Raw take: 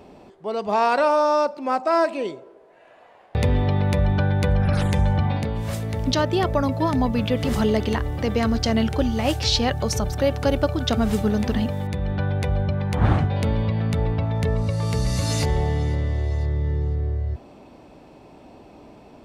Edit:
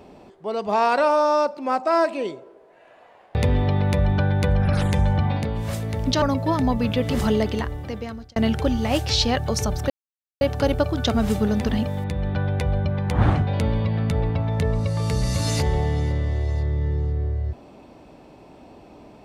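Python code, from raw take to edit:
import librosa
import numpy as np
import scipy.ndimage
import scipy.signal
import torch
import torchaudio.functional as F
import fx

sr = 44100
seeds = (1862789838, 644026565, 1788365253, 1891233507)

y = fx.edit(x, sr, fx.cut(start_s=6.22, length_s=0.34),
    fx.fade_out_span(start_s=7.68, length_s=1.02),
    fx.insert_silence(at_s=10.24, length_s=0.51), tone=tone)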